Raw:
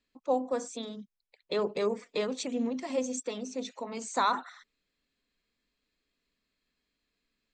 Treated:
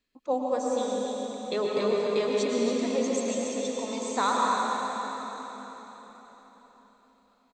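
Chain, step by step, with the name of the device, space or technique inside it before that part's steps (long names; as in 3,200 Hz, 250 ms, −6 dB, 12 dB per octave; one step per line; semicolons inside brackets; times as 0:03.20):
cave (single-tap delay 282 ms −8.5 dB; convolution reverb RT60 4.5 s, pre-delay 100 ms, DRR −2.5 dB)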